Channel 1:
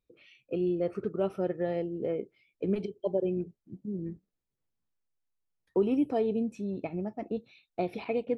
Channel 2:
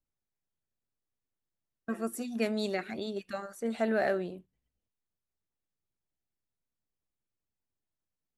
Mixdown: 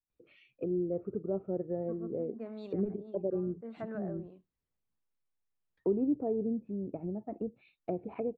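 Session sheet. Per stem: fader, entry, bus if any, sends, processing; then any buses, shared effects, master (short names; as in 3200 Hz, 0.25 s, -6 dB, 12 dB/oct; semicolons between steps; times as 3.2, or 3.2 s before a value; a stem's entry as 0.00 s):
-2.5 dB, 0.10 s, no send, LPF 2900 Hz
-11.5 dB, 0.00 s, no send, bell 1100 Hz +8 dB 0.4 oct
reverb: off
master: treble ducked by the level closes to 560 Hz, closed at -33 dBFS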